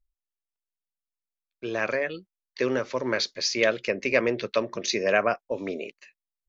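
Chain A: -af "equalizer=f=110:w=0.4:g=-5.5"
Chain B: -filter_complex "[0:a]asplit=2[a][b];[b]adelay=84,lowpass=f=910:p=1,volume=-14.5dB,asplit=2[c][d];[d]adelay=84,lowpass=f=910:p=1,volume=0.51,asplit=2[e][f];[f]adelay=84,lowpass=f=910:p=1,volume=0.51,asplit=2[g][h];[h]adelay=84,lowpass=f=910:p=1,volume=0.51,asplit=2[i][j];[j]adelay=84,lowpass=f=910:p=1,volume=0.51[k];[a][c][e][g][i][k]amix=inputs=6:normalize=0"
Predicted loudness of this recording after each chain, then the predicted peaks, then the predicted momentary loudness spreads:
-27.5, -26.5 LUFS; -7.5, -6.5 dBFS; 11, 10 LU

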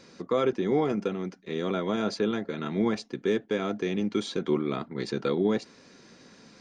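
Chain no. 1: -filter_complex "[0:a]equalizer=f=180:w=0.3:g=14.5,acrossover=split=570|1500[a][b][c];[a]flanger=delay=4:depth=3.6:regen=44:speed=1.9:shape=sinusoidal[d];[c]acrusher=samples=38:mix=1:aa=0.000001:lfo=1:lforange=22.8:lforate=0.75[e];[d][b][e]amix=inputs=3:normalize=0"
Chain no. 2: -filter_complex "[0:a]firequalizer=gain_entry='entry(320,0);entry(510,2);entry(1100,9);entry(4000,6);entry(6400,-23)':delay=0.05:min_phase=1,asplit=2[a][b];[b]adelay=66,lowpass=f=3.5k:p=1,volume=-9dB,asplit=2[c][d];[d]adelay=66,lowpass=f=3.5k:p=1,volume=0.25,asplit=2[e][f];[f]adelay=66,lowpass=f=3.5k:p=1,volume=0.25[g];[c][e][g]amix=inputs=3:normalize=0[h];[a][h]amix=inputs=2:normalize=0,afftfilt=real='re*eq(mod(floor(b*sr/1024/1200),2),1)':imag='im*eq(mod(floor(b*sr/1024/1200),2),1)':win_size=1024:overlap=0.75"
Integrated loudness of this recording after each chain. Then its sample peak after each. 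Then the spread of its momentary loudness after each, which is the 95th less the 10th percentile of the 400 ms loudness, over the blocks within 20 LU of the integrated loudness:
-21.0, -32.5 LUFS; -5.0, -14.5 dBFS; 7, 15 LU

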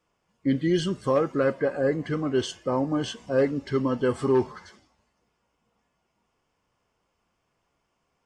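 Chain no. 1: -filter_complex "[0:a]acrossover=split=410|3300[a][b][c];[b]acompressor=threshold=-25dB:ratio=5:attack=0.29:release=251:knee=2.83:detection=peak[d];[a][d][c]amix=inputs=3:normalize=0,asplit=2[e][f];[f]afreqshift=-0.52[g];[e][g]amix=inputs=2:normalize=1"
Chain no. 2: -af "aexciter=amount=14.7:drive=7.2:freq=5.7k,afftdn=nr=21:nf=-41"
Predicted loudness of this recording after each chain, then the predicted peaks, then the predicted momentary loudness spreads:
-29.5, -24.0 LUFS; -15.0, -6.0 dBFS; 6, 7 LU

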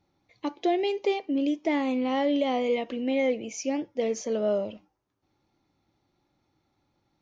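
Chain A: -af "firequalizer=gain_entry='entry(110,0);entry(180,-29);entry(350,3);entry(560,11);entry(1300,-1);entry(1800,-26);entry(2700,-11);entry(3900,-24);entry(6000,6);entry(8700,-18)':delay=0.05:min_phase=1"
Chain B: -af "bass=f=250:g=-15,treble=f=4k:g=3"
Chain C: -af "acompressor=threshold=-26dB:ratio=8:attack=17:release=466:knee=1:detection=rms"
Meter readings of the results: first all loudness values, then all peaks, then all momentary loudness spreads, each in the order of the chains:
-21.5, -30.0, -32.0 LUFS; -7.0, -16.5, -18.5 dBFS; 8, 5, 4 LU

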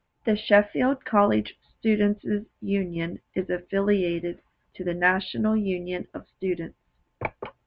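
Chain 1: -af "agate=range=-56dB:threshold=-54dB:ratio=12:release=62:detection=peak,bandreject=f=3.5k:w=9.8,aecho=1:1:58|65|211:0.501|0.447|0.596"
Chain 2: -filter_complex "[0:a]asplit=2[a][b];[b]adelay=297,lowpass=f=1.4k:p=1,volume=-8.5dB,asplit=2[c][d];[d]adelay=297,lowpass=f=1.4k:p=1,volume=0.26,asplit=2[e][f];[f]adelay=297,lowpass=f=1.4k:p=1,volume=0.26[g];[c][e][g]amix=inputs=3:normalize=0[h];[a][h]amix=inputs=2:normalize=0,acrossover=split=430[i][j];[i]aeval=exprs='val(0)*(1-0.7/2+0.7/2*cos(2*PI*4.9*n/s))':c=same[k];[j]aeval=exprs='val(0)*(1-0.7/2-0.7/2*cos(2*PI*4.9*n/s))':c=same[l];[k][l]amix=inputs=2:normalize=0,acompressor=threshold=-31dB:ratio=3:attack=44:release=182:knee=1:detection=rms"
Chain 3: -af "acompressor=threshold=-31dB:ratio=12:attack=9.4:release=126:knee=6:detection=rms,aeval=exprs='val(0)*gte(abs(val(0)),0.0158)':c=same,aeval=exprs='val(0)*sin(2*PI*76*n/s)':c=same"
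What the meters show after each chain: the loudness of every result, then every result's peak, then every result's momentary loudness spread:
-24.0, -34.0, -41.0 LUFS; -6.0, -15.5, -23.0 dBFS; 13, 6, 6 LU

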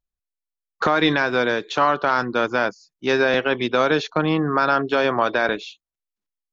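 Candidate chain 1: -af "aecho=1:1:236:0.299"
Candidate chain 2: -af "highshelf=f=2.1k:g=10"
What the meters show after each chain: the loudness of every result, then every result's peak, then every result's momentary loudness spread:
-20.0, -18.0 LUFS; -4.5, -2.0 dBFS; 6, 6 LU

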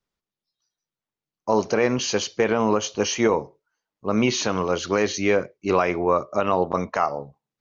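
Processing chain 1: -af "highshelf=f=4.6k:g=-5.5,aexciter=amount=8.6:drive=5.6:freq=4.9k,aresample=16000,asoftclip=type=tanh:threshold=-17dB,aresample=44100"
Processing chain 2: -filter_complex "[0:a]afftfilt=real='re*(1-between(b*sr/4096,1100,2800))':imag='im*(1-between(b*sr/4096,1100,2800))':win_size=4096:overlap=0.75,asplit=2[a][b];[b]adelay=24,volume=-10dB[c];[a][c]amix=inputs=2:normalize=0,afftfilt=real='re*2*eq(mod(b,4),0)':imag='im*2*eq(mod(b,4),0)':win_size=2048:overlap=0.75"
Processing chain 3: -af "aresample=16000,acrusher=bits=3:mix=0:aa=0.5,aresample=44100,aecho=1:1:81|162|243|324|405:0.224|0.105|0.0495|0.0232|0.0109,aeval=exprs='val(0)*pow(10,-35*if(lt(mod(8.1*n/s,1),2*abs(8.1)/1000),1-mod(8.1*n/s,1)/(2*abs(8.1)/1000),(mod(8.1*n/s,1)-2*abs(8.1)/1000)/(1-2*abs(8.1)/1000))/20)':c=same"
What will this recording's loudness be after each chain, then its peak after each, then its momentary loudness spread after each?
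-23.5, -26.0, -32.0 LUFS; -12.0, -9.5, -8.5 dBFS; 8, 7, 6 LU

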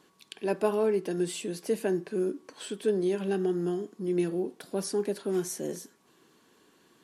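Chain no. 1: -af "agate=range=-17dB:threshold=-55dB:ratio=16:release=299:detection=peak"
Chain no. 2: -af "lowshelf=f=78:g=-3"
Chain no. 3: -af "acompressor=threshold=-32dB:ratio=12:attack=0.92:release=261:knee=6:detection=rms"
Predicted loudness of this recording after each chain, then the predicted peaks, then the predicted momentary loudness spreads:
-30.5, -30.5, -40.0 LUFS; -12.5, -12.5, -25.0 dBFS; 8, 9, 5 LU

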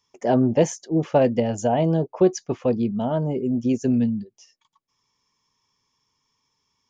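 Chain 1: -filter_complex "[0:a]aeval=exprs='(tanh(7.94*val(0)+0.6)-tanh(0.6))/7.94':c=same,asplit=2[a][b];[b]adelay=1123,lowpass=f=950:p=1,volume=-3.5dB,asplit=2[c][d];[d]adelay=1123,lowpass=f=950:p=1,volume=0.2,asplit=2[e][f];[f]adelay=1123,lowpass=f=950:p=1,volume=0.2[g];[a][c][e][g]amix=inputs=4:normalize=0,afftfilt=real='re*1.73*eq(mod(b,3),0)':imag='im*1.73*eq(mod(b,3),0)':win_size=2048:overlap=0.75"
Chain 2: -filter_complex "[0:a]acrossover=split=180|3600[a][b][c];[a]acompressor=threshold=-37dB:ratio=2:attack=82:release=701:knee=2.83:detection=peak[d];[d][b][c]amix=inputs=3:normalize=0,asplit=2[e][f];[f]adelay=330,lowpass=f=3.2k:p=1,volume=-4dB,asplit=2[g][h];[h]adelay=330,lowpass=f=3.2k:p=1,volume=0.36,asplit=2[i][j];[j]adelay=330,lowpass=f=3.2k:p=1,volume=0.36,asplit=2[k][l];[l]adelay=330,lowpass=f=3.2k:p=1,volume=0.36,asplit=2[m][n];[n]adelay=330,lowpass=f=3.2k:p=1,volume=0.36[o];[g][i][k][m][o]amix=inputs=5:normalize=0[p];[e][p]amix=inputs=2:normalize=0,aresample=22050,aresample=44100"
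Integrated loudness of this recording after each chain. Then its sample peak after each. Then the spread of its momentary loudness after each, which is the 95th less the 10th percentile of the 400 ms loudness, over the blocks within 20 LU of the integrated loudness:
-27.5, -21.5 LUFS; -11.5, -4.5 dBFS; 19, 7 LU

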